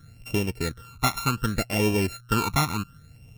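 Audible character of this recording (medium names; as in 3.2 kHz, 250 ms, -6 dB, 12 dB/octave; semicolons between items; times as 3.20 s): a buzz of ramps at a fixed pitch in blocks of 32 samples; phasing stages 12, 0.67 Hz, lowest notch 510–1400 Hz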